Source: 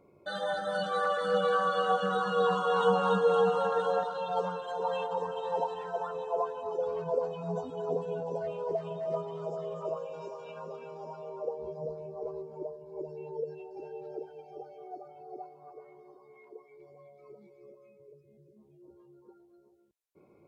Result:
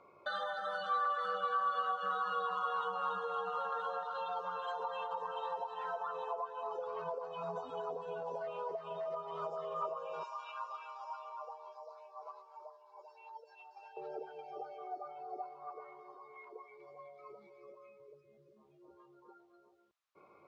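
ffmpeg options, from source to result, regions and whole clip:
-filter_complex "[0:a]asettb=1/sr,asplit=3[s0][s1][s2];[s0]atrim=end=10.234[s3];[s1]atrim=start=10.23:end=13.97,asetpts=PTS-STARTPTS,afade=t=in:d=0.004:c=qsin,afade=t=out:st=3.736:d=0.004:c=qsin,highpass=f=890:w=0.5412,highpass=f=890:w=1.3066,equalizer=f=1700:w=1.1:g=-4.5[s4];[s2]atrim=start=13.966[s5];[s3][s4]acrossfade=d=0.004:c1=hsin:c2=qsin[s6];[s6][s5]acrossfade=d=0.004:c1=qsin:c2=hsin,acrossover=split=570 5700:gain=0.178 1 0.126[s7][s8][s9];[s7][s8][s9]amix=inputs=3:normalize=0,acompressor=threshold=0.00708:ratio=10,equalizer=f=1200:w=3.9:g=10,volume=1.78"

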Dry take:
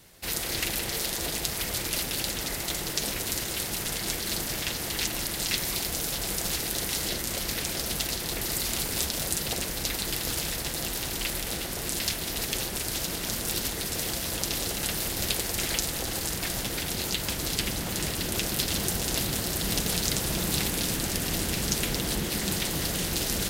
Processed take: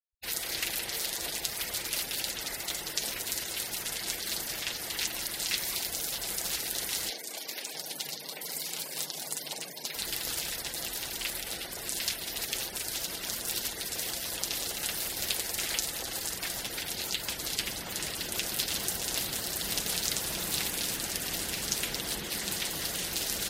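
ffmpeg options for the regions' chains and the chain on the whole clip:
-filter_complex "[0:a]asettb=1/sr,asplit=3[s0][s1][s2];[s0]atrim=end=7.104[s3];[s1]atrim=start=7.1:end=9.96,asetpts=PTS-STARTPTS,afade=t=in:d=0.004:c=qsin,afade=t=out:st=2.856:d=0.004:c=qsin,afreqshift=110,acrossover=split=210[s4][s5];[s4]adelay=630[s6];[s6][s5]amix=inputs=2:normalize=0,atrim=end_sample=126126,aeval=exprs='(tanh(3.16*val(0)+0.6)-tanh(0.6))/3.16':c=same[s7];[s2]atrim=start=9.956[s8];[s3][s7]acrossfade=d=0.004:c1=hsin:c2=qsin[s9];[s9][s8]acrossfade=d=0.004:c1=qsin:c2=hsin,afftfilt=real='re*gte(hypot(re,im),0.0158)':imag='im*gte(hypot(re,im),0.0158)':win_size=1024:overlap=0.75,lowshelf=f=410:g=-12,volume=0.794"

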